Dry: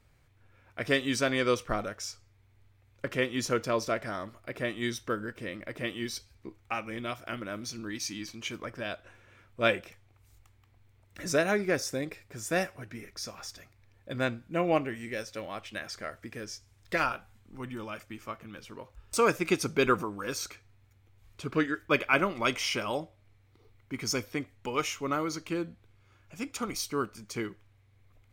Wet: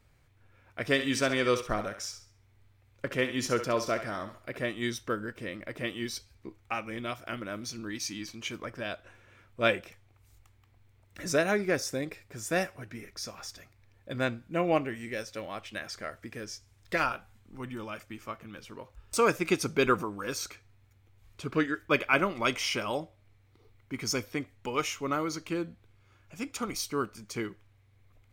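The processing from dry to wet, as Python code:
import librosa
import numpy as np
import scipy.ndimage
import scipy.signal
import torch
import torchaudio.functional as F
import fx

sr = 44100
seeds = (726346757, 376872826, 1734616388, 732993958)

y = fx.echo_thinned(x, sr, ms=67, feedback_pct=34, hz=420.0, wet_db=-9.0, at=(0.92, 4.66))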